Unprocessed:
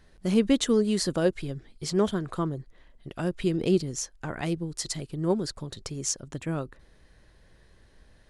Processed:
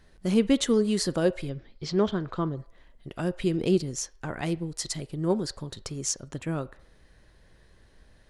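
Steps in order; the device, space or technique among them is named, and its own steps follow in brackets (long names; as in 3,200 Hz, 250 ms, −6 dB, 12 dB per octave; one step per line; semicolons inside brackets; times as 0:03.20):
filtered reverb send (on a send: high-pass filter 490 Hz 24 dB per octave + low-pass filter 3,500 Hz 12 dB per octave + convolution reverb RT60 0.65 s, pre-delay 10 ms, DRR 15.5 dB)
0:01.49–0:02.58: on the sum: low-pass filter 5,400 Hz 24 dB per octave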